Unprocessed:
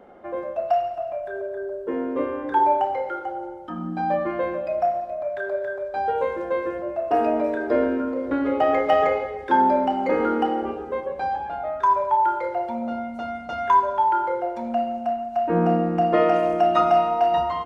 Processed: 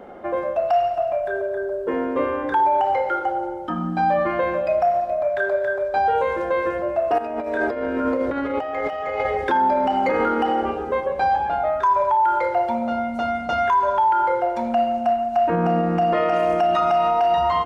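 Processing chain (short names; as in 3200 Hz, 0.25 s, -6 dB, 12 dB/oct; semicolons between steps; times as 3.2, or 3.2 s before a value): dynamic EQ 310 Hz, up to -7 dB, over -35 dBFS, Q 0.86; limiter -20 dBFS, peak gain reduction 10 dB; 7.18–9.5 negative-ratio compressor -31 dBFS, ratio -0.5; gain +8 dB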